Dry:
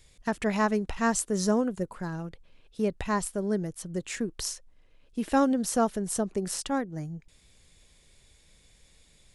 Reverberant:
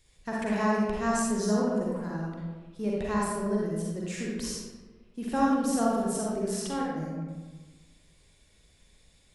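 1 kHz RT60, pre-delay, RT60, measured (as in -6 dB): 1.3 s, 38 ms, 1.4 s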